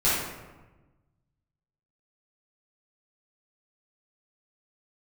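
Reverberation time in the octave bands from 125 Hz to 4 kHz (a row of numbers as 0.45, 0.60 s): 1.9, 1.5, 1.2, 1.1, 1.0, 0.70 s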